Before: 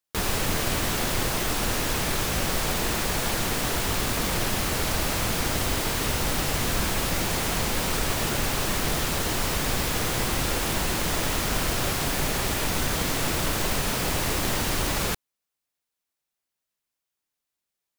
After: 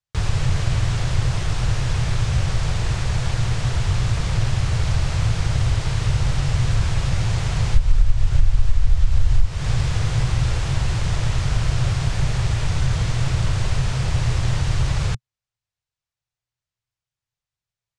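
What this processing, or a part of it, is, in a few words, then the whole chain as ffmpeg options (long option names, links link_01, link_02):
jukebox: -filter_complex "[0:a]lowpass=frequency=9200:width=0.5412,lowpass=frequency=9200:width=1.3066,asplit=3[link_01][link_02][link_03];[link_01]afade=type=out:start_time=7.74:duration=0.02[link_04];[link_02]asubboost=boost=11.5:cutoff=54,afade=type=in:start_time=7.74:duration=0.02,afade=type=out:start_time=9.45:duration=0.02[link_05];[link_03]afade=type=in:start_time=9.45:duration=0.02[link_06];[link_04][link_05][link_06]amix=inputs=3:normalize=0,lowpass=7600,lowshelf=frequency=170:width_type=q:width=3:gain=11.5,acompressor=threshold=-8dB:ratio=4,volume=-3dB"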